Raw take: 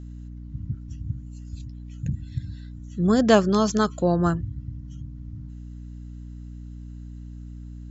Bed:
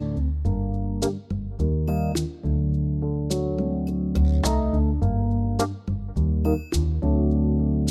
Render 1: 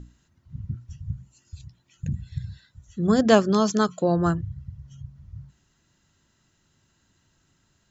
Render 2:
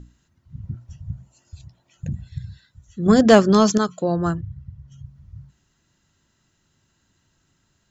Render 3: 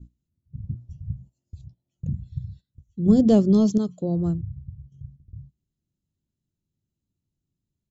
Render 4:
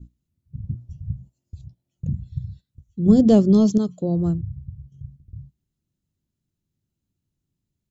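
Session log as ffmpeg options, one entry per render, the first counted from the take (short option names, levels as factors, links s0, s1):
-af "bandreject=f=60:t=h:w=6,bandreject=f=120:t=h:w=6,bandreject=f=180:t=h:w=6,bandreject=f=240:t=h:w=6,bandreject=f=300:t=h:w=6"
-filter_complex "[0:a]asettb=1/sr,asplit=3[s0][s1][s2];[s0]atrim=end=0.634[s3];[s1]atrim=start=0.63:end=2.28,asetpts=PTS-STARTPTS,afade=t=in:d=0.004:c=qsin,afade=t=out:st=1.646:d=0.004:c=qsin,equalizer=f=660:t=o:w=1.2:g=12[s4];[s2]atrim=start=2.276[s5];[s3][s4]acrossfade=d=0.004:c1=hsin:c2=qsin[s6];[s6][s5]acrossfade=d=0.004:c1=qsin:c2=hsin,asettb=1/sr,asplit=3[s7][s8][s9];[s7]atrim=end=3.064[s10];[s8]atrim=start=3.06:end=3.78,asetpts=PTS-STARTPTS,afade=t=in:d=0.004:c=qsin,afade=t=out:st=0.716:d=0.004:c=qsin,acontrast=62[s11];[s9]atrim=start=3.776[s12];[s10][s11]acrossfade=d=0.004:c1=hsin:c2=qsin[s13];[s13][s12]acrossfade=d=0.004:c1=qsin:c2=hsin,asettb=1/sr,asplit=3[s14][s15][s16];[s14]atrim=end=4.404[s17];[s15]atrim=start=4.4:end=4.92,asetpts=PTS-STARTPTS,afade=t=in:d=0.004:c=qsin,afade=t=out:st=0.516:d=0.004:c=qsin,highshelf=f=3700:g=-8[s18];[s16]atrim=start=4.916[s19];[s17][s18]acrossfade=d=0.004:c1=hsin:c2=qsin[s20];[s20][s19]acrossfade=d=0.004:c1=qsin:c2=hsin"
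-af "agate=range=0.224:threshold=0.00631:ratio=16:detection=peak,firequalizer=gain_entry='entry(180,0);entry(1000,-20);entry(1600,-28);entry(3300,-14)':delay=0.05:min_phase=1"
-af "volume=1.33"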